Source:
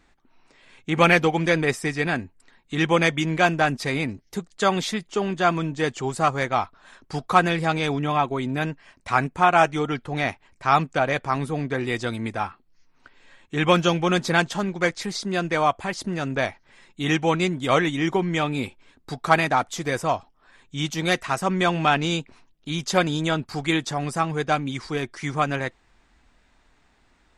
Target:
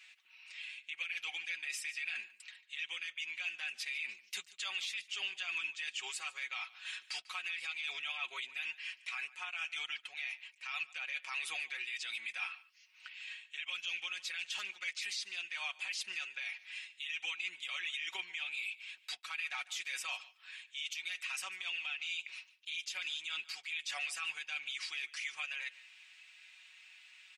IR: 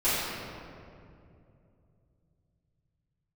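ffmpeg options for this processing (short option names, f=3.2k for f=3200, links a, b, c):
-filter_complex "[0:a]highpass=f=2.6k:t=q:w=4.4,areverse,acompressor=threshold=-32dB:ratio=20,areverse,alimiter=level_in=9.5dB:limit=-24dB:level=0:latency=1:release=80,volume=-9.5dB,aecho=1:1:5.4:0.68,asplit=2[a][b];[b]aecho=0:1:146:0.1[c];[a][c]amix=inputs=2:normalize=0,volume=2dB"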